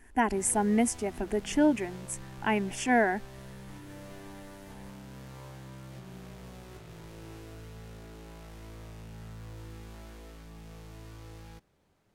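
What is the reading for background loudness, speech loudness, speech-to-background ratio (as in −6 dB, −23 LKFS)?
−47.5 LKFS, −28.5 LKFS, 19.0 dB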